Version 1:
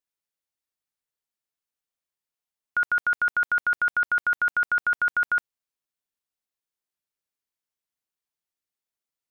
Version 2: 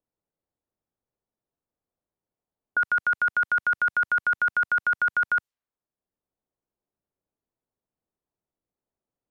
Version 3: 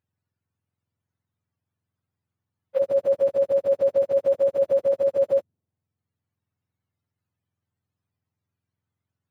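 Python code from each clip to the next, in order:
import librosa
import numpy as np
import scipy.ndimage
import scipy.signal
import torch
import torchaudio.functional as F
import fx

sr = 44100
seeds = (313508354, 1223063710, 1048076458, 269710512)

y1 = fx.env_lowpass(x, sr, base_hz=640.0, full_db=-24.0)
y1 = fx.band_squash(y1, sr, depth_pct=40)
y2 = fx.octave_mirror(y1, sr, pivot_hz=890.0)
y2 = F.gain(torch.from_numpy(y2), 4.5).numpy()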